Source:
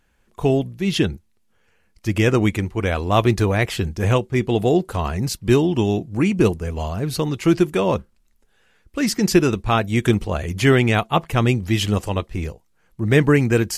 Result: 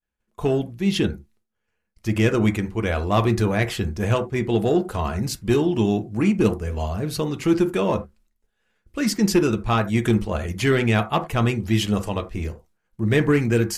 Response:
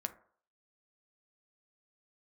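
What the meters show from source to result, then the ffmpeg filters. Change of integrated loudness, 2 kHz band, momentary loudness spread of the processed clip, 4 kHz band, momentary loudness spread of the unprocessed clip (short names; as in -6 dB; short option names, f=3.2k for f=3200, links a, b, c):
-2.5 dB, -3.0 dB, 8 LU, -3.0 dB, 9 LU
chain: -filter_complex "[0:a]acontrast=49,agate=range=-33dB:threshold=-45dB:ratio=3:detection=peak[a];[1:a]atrim=start_sample=2205,atrim=end_sample=4410[b];[a][b]afir=irnorm=-1:irlink=0,volume=-7dB"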